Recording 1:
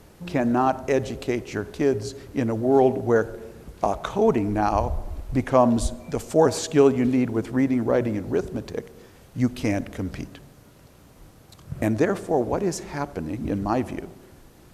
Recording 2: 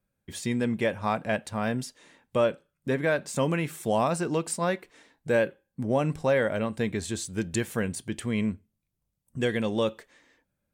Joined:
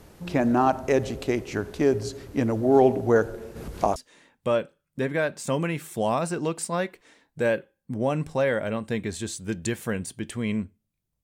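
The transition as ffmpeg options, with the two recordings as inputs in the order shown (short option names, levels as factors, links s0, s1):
-filter_complex "[0:a]asplit=3[s0][s1][s2];[s0]afade=t=out:st=3.55:d=0.02[s3];[s1]acompressor=mode=upward:threshold=0.0447:ratio=2.5:attack=3.2:release=140:knee=2.83:detection=peak,afade=t=in:st=3.55:d=0.02,afade=t=out:st=3.96:d=0.02[s4];[s2]afade=t=in:st=3.96:d=0.02[s5];[s3][s4][s5]amix=inputs=3:normalize=0,apad=whole_dur=11.23,atrim=end=11.23,atrim=end=3.962[s6];[1:a]atrim=start=1.848:end=9.12[s7];[s6][s7]acrossfade=d=0.004:c1=hsin:c2=hsin"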